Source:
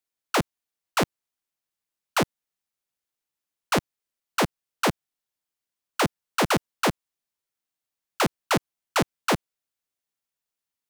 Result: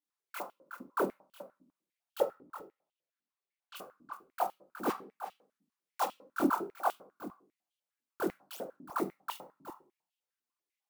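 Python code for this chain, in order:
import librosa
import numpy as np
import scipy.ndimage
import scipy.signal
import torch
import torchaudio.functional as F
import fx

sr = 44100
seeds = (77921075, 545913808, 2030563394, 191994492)

p1 = fx.block_float(x, sr, bits=3, at=(4.86, 6.02), fade=0.02)
p2 = fx.high_shelf(p1, sr, hz=12000.0, db=6.5)
p3 = np.abs(p2)
p4 = fx.chorus_voices(p3, sr, voices=4, hz=1.3, base_ms=23, depth_ms=3.0, mix_pct=60)
p5 = fx.air_absorb(p4, sr, metres=130.0, at=(2.22, 3.75), fade=0.02)
p6 = p5 + fx.echo_single(p5, sr, ms=367, db=-12.5, dry=0)
p7 = fx.room_shoebox(p6, sr, seeds[0], volume_m3=310.0, walls='furnished', distance_m=0.77)
p8 = fx.filter_held_highpass(p7, sr, hz=10.0, low_hz=270.0, high_hz=3000.0)
y = F.gain(torch.from_numpy(p8), -5.0).numpy()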